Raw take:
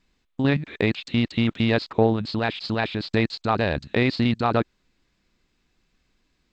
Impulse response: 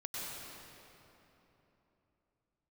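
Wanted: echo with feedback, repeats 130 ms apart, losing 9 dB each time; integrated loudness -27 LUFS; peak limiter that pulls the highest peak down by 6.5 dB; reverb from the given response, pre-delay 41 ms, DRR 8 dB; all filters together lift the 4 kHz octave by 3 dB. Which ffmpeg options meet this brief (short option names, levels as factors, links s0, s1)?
-filter_complex "[0:a]equalizer=f=4000:t=o:g=3.5,alimiter=limit=0.251:level=0:latency=1,aecho=1:1:130|260|390|520:0.355|0.124|0.0435|0.0152,asplit=2[s0][s1];[1:a]atrim=start_sample=2205,adelay=41[s2];[s1][s2]afir=irnorm=-1:irlink=0,volume=0.335[s3];[s0][s3]amix=inputs=2:normalize=0,volume=0.708"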